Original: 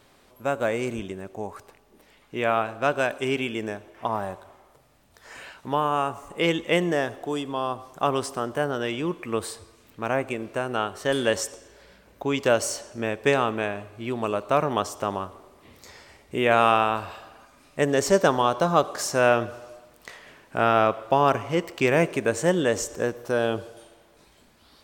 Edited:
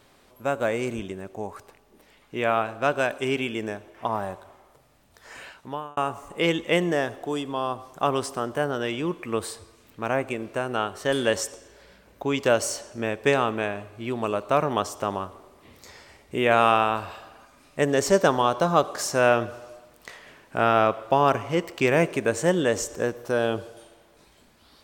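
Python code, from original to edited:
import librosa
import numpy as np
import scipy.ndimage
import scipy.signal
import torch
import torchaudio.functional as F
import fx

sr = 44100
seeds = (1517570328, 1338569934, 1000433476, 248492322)

y = fx.edit(x, sr, fx.fade_out_span(start_s=5.44, length_s=0.53), tone=tone)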